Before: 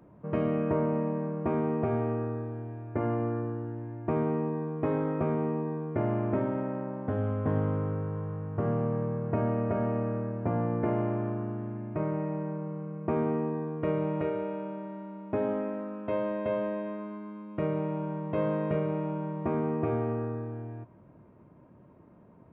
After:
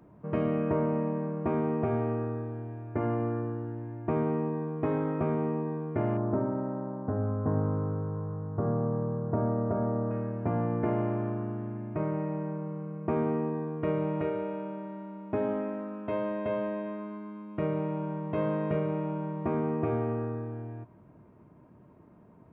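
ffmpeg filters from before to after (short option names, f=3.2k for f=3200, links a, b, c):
-filter_complex "[0:a]asettb=1/sr,asplit=3[a][b][c];[a]atrim=end=6.174[d];[b]atrim=start=6.17:end=10.11,asetpts=PTS-STARTPTS,afade=t=in:d=0.004:c=qsin,afade=t=out:st=3.936:d=0.004:c=qsin,lowpass=f=1.4k:w=0.5412,lowpass=f=1.4k:w=1.3066[e];[c]atrim=start=10.106[f];[d][e]acrossfade=d=0.004:c1=hsin:c2=qsin[g];[g][f]acrossfade=d=0.004:c1=qsin:c2=hsin,bandreject=f=540:w=12"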